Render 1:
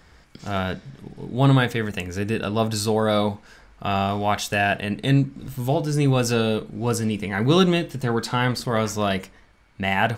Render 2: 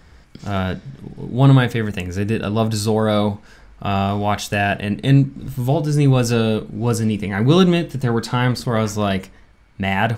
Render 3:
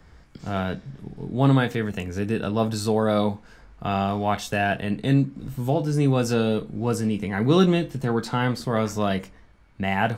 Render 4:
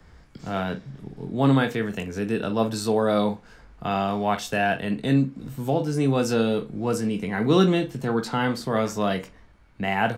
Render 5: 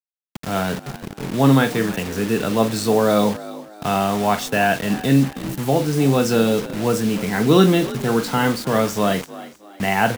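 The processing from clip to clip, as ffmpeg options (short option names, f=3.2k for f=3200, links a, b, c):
-af "lowshelf=f=290:g=6,volume=1dB"
-filter_complex "[0:a]acrossover=split=140|1300|1700[a][b][c][d];[a]acompressor=threshold=-31dB:ratio=6[e];[d]flanger=delay=19:depth=2.4:speed=0.34[f];[e][b][c][f]amix=inputs=4:normalize=0,volume=-3.5dB"
-filter_complex "[0:a]acrossover=split=130|5400[a][b][c];[a]acompressor=threshold=-44dB:ratio=6[d];[b]asplit=2[e][f];[f]adelay=44,volume=-12.5dB[g];[e][g]amix=inputs=2:normalize=0[h];[d][h][c]amix=inputs=3:normalize=0"
-filter_complex "[0:a]acrusher=bits=5:mix=0:aa=0.000001,asplit=4[a][b][c][d];[b]adelay=316,afreqshift=50,volume=-17dB[e];[c]adelay=632,afreqshift=100,volume=-25.2dB[f];[d]adelay=948,afreqshift=150,volume=-33.4dB[g];[a][e][f][g]amix=inputs=4:normalize=0,volume=5dB"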